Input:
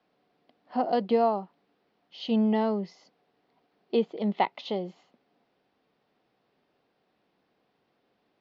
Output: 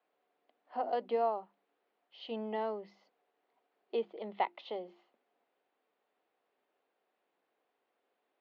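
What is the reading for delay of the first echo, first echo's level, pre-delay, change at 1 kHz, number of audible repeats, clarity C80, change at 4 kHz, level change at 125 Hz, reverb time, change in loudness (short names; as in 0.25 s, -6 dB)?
none, none, none, -6.5 dB, none, none, -10.0 dB, under -15 dB, none, -9.5 dB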